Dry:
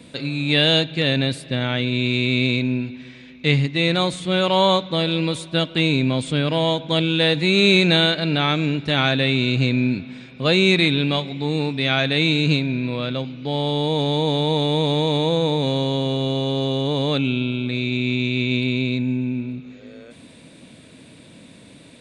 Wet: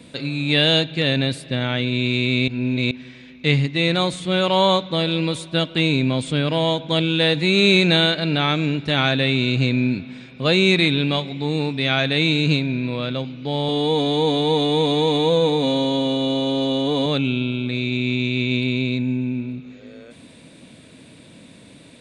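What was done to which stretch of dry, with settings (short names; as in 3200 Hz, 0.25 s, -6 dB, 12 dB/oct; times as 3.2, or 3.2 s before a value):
2.48–2.91 reverse
13.68–17.06 comb 4.1 ms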